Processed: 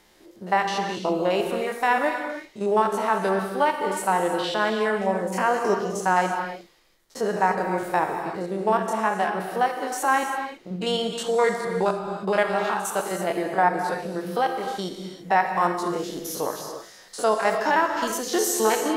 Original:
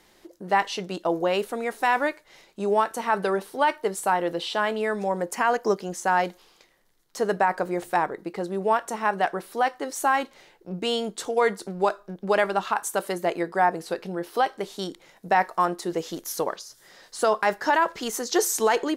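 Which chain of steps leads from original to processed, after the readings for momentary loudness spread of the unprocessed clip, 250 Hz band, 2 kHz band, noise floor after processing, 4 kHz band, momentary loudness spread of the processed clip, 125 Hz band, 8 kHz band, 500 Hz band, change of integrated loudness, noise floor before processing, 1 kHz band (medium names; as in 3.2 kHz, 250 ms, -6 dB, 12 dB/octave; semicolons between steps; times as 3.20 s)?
9 LU, +2.0 dB, +1.0 dB, -51 dBFS, +1.0 dB, 8 LU, +3.5 dB, +1.0 dB, +1.5 dB, +1.0 dB, -59 dBFS, +1.5 dB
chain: spectrogram pixelated in time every 50 ms; gated-style reverb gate 360 ms flat, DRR 4 dB; trim +1.5 dB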